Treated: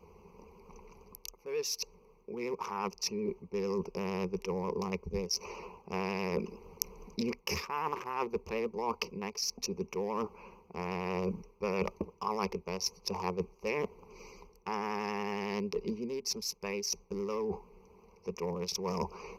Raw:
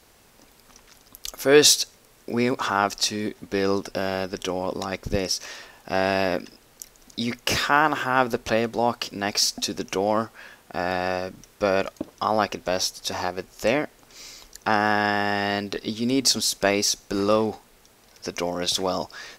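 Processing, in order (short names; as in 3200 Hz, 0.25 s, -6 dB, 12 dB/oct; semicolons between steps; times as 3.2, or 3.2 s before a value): Wiener smoothing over 25 samples; ripple EQ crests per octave 0.81, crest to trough 17 dB; reverse; compressor 6:1, threshold -32 dBFS, peak gain reduction 25.5 dB; reverse; vibrato 11 Hz 51 cents; vocal rider within 5 dB 0.5 s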